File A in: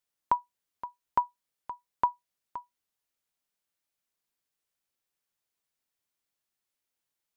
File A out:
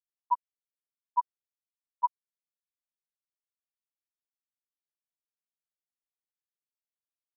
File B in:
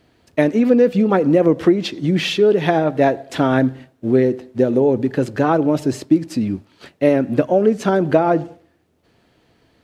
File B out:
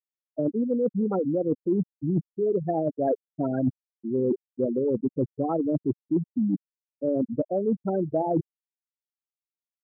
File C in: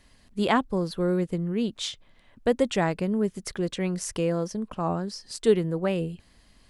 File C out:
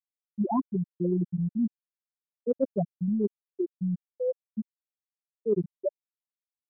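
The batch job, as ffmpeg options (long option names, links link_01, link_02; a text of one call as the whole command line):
ffmpeg -i in.wav -af "highshelf=frequency=3000:gain=-6,afftfilt=real='re*gte(hypot(re,im),0.501)':imag='im*gte(hypot(re,im),0.501)':win_size=1024:overlap=0.75,areverse,acompressor=threshold=-26dB:ratio=12,areverse,volume=4dB" out.wav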